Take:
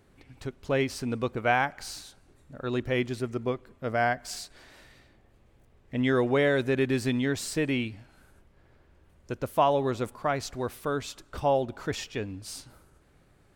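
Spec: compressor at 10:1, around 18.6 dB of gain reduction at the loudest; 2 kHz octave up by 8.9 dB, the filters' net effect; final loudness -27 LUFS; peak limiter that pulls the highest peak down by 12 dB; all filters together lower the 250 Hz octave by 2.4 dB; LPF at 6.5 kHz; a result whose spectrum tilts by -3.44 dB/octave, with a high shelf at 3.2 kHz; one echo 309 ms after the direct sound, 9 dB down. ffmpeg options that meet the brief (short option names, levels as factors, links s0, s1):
-af "lowpass=6500,equalizer=f=250:t=o:g=-3,equalizer=f=2000:t=o:g=8.5,highshelf=f=3200:g=9,acompressor=threshold=0.0178:ratio=10,alimiter=level_in=3.16:limit=0.0631:level=0:latency=1,volume=0.316,aecho=1:1:309:0.355,volume=7.08"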